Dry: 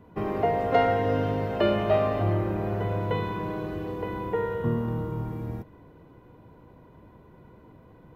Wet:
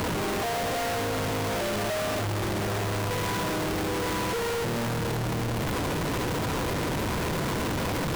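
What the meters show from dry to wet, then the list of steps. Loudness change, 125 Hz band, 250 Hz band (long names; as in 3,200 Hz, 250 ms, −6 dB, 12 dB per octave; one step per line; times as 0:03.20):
−1.0 dB, 0.0 dB, +1.0 dB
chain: sign of each sample alone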